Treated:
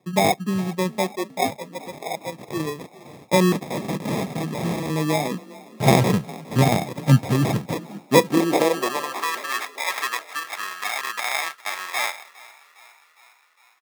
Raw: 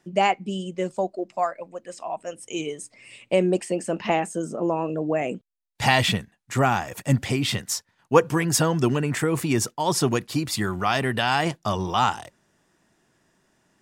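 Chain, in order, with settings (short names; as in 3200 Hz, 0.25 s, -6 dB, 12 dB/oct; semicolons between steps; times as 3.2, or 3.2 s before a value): sample-and-hold 30×; 3.52–4.9 wrapped overs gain 23 dB; high-pass sweep 150 Hz -> 1400 Hz, 8.04–9.36; frequency-shifting echo 0.408 s, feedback 62%, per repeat +32 Hz, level -21 dB; gain +1 dB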